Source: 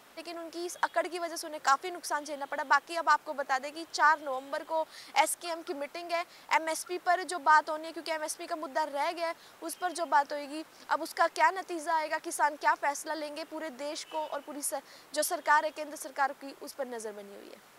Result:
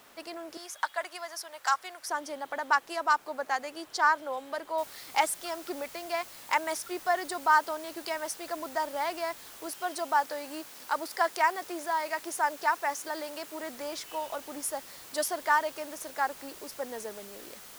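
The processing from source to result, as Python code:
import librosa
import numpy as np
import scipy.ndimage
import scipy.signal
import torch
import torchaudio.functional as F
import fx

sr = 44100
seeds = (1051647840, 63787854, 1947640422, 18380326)

y = fx.highpass(x, sr, hz=830.0, slope=12, at=(0.57, 2.07))
y = fx.noise_floor_step(y, sr, seeds[0], at_s=4.78, before_db=-64, after_db=-49, tilt_db=0.0)
y = fx.highpass(y, sr, hz=170.0, slope=6, at=(9.66, 13.63))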